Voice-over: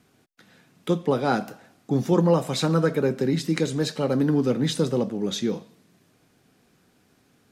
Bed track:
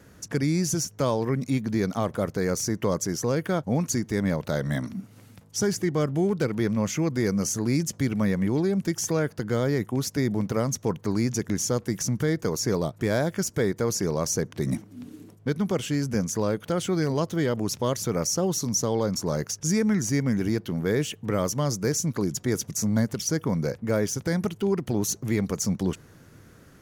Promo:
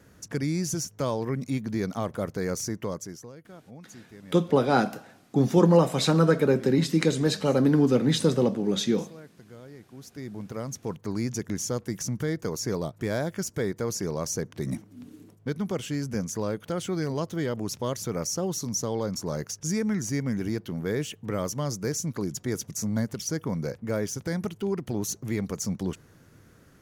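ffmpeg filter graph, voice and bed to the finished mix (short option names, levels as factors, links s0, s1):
-filter_complex "[0:a]adelay=3450,volume=1.12[s0];[1:a]volume=5.01,afade=t=out:st=2.62:d=0.7:silence=0.125893,afade=t=in:st=9.9:d=1.38:silence=0.133352[s1];[s0][s1]amix=inputs=2:normalize=0"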